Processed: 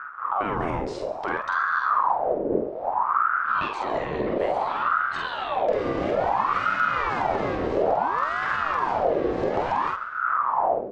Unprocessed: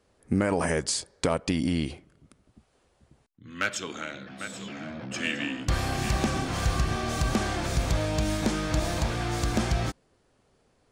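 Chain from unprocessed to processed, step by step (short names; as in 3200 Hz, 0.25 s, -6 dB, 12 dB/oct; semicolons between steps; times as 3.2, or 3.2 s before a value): wind noise 120 Hz -26 dBFS; AGC gain up to 16 dB; sample leveller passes 1; compressor, threshold -18 dBFS, peak gain reduction 12.5 dB; limiter -14.5 dBFS, peak gain reduction 11.5 dB; tape spacing loss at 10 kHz 38 dB; doubler 47 ms -3.5 dB; feedback echo 0.137 s, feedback 48%, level -16 dB; ring modulator with a swept carrier 890 Hz, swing 55%, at 0.59 Hz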